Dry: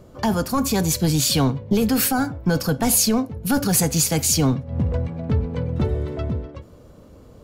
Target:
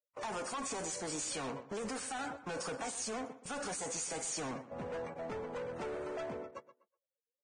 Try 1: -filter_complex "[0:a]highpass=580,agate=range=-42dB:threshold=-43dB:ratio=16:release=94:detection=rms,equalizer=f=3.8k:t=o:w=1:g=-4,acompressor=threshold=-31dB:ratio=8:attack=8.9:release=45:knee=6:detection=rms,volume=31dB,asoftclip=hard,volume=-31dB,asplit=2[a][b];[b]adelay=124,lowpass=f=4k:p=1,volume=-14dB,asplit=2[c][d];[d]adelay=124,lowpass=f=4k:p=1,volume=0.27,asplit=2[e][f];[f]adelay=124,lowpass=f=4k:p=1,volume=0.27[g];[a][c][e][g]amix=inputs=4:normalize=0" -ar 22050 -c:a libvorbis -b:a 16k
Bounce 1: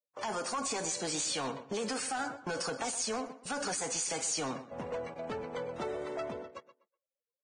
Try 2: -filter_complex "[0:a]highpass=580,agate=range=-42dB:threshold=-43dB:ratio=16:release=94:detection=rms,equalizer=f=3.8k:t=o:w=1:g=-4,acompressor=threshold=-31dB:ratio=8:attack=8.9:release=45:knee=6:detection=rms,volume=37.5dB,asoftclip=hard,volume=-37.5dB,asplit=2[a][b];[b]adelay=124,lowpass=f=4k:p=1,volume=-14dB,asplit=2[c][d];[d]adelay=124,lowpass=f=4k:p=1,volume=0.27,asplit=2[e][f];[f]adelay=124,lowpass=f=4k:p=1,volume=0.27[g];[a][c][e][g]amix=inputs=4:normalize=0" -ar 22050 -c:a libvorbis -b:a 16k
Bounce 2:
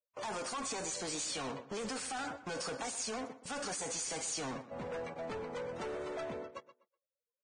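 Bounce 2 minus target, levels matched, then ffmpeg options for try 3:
4000 Hz band +3.0 dB
-filter_complex "[0:a]highpass=580,agate=range=-42dB:threshold=-43dB:ratio=16:release=94:detection=rms,equalizer=f=3.8k:t=o:w=1:g=-15,acompressor=threshold=-31dB:ratio=8:attack=8.9:release=45:knee=6:detection=rms,volume=37.5dB,asoftclip=hard,volume=-37.5dB,asplit=2[a][b];[b]adelay=124,lowpass=f=4k:p=1,volume=-14dB,asplit=2[c][d];[d]adelay=124,lowpass=f=4k:p=1,volume=0.27,asplit=2[e][f];[f]adelay=124,lowpass=f=4k:p=1,volume=0.27[g];[a][c][e][g]amix=inputs=4:normalize=0" -ar 22050 -c:a libvorbis -b:a 16k

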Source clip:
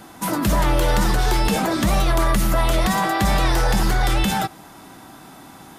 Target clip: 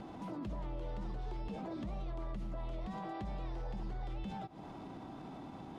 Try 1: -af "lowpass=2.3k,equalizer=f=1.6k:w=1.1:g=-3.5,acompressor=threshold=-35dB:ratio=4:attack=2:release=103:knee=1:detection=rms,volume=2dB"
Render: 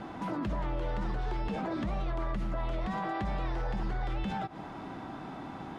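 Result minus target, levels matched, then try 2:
compressor: peak gain reduction -7.5 dB; 2000 Hz band +6.0 dB
-af "lowpass=2.3k,equalizer=f=1.6k:w=1.1:g=-12,acompressor=threshold=-45.5dB:ratio=4:attack=2:release=103:knee=1:detection=rms,volume=2dB"

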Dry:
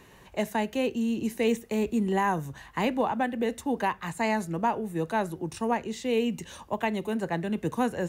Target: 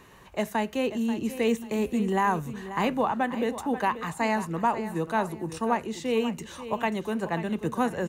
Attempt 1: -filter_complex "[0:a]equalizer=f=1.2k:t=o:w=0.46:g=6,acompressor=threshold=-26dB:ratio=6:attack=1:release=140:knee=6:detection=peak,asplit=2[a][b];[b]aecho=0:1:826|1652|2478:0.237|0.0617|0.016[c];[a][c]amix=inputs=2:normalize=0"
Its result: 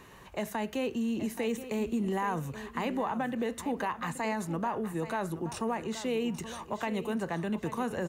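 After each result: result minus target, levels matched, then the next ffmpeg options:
echo 0.29 s late; compressor: peak gain reduction +9.5 dB
-filter_complex "[0:a]equalizer=f=1.2k:t=o:w=0.46:g=6,acompressor=threshold=-26dB:ratio=6:attack=1:release=140:knee=6:detection=peak,asplit=2[a][b];[b]aecho=0:1:536|1072|1608:0.237|0.0617|0.016[c];[a][c]amix=inputs=2:normalize=0"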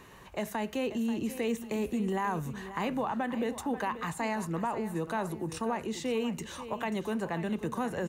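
compressor: peak gain reduction +9.5 dB
-filter_complex "[0:a]equalizer=f=1.2k:t=o:w=0.46:g=6,asplit=2[a][b];[b]aecho=0:1:536|1072|1608:0.237|0.0617|0.016[c];[a][c]amix=inputs=2:normalize=0"

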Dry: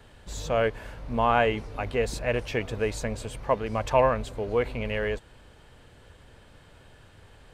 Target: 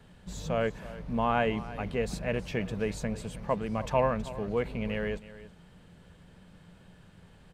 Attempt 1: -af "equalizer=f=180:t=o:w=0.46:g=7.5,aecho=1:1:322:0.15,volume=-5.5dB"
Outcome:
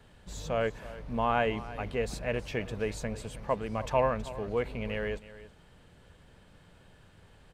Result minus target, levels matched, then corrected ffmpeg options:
250 Hz band -3.0 dB
-af "equalizer=f=180:t=o:w=0.46:g=17.5,aecho=1:1:322:0.15,volume=-5.5dB"

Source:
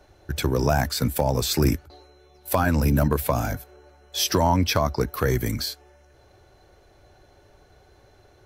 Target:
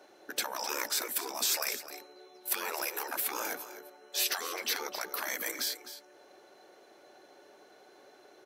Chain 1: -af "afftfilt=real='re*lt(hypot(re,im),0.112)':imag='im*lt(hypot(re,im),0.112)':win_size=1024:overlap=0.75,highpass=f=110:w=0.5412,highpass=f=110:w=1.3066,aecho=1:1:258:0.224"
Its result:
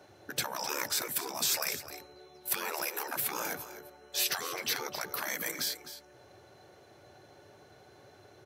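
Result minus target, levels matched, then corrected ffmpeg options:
125 Hz band +16.5 dB
-af "afftfilt=real='re*lt(hypot(re,im),0.112)':imag='im*lt(hypot(re,im),0.112)':win_size=1024:overlap=0.75,highpass=f=250:w=0.5412,highpass=f=250:w=1.3066,aecho=1:1:258:0.224"

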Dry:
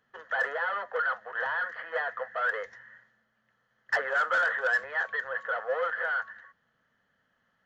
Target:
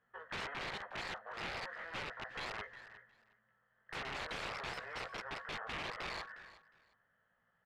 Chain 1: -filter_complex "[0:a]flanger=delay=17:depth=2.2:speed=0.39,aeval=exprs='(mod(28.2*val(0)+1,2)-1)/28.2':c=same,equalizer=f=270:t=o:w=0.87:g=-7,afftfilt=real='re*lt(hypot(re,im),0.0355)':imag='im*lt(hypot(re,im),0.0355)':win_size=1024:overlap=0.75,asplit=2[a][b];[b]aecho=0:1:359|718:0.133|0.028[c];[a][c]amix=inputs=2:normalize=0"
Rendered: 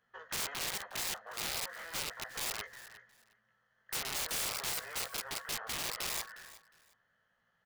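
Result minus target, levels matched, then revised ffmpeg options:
2000 Hz band -5.5 dB
-filter_complex "[0:a]flanger=delay=17:depth=2.2:speed=0.39,aeval=exprs='(mod(28.2*val(0)+1,2)-1)/28.2':c=same,lowpass=2.2k,equalizer=f=270:t=o:w=0.87:g=-7,afftfilt=real='re*lt(hypot(re,im),0.0355)':imag='im*lt(hypot(re,im),0.0355)':win_size=1024:overlap=0.75,asplit=2[a][b];[b]aecho=0:1:359|718:0.133|0.028[c];[a][c]amix=inputs=2:normalize=0"

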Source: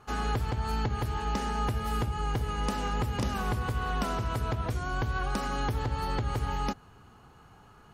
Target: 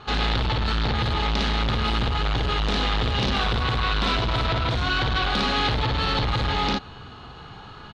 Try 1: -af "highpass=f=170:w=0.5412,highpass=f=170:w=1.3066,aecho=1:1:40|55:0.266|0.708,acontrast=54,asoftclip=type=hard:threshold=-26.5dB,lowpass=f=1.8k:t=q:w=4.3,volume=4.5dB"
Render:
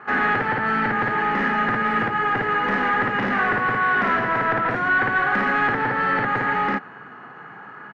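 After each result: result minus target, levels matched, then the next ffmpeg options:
4000 Hz band -16.5 dB; 125 Hz band -12.0 dB
-af "highpass=f=170:w=0.5412,highpass=f=170:w=1.3066,aecho=1:1:40|55:0.266|0.708,acontrast=54,asoftclip=type=hard:threshold=-26.5dB,lowpass=f=3.8k:t=q:w=4.3,volume=4.5dB"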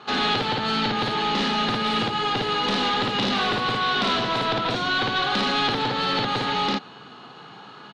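125 Hz band -9.5 dB
-af "aecho=1:1:40|55:0.266|0.708,acontrast=54,asoftclip=type=hard:threshold=-26.5dB,lowpass=f=3.8k:t=q:w=4.3,volume=4.5dB"

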